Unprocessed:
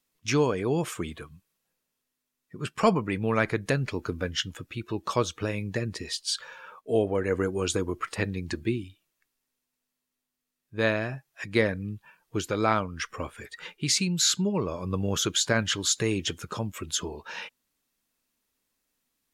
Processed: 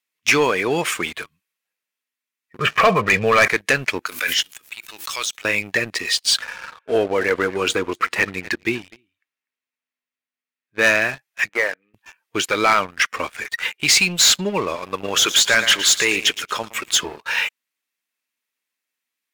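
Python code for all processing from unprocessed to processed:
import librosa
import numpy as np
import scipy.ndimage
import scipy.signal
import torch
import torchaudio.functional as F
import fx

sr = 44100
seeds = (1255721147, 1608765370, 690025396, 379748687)

y = fx.chain(x, sr, fx.air_absorb(metres=380.0),
    fx.comb(ms=1.7, depth=0.67),
    fx.env_flatten(amount_pct=50), at=(2.59, 3.48))
y = fx.chain(y, sr, fx.differentiator(),
    fx.pre_swell(db_per_s=38.0), at=(4.06, 5.45))
y = fx.chain(y, sr, fx.high_shelf(hz=4600.0, db=-11.5),
    fx.echo_single(ms=247, db=-19.0), at=(6.42, 10.84))
y = fx.chain(y, sr, fx.median_filter(points=15),
    fx.highpass(hz=610.0, slope=12),
    fx.air_absorb(metres=450.0), at=(11.49, 11.94))
y = fx.chain(y, sr, fx.low_shelf(hz=190.0, db=-11.0),
    fx.echo_feedback(ms=114, feedback_pct=34, wet_db=-14), at=(14.75, 16.96))
y = fx.highpass(y, sr, hz=640.0, slope=6)
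y = fx.peak_eq(y, sr, hz=2200.0, db=9.0, octaves=1.1)
y = fx.leveller(y, sr, passes=3)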